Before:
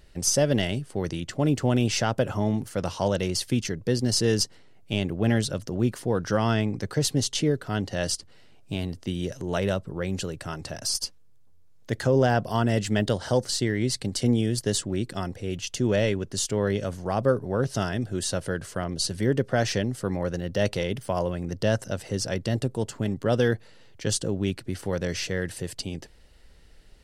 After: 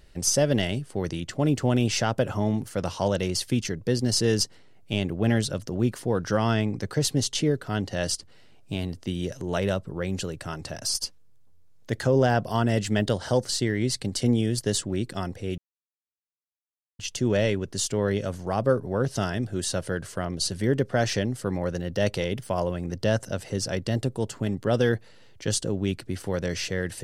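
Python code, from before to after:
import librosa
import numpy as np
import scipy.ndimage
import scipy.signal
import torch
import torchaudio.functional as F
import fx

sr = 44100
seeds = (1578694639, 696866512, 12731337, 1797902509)

y = fx.edit(x, sr, fx.insert_silence(at_s=15.58, length_s=1.41), tone=tone)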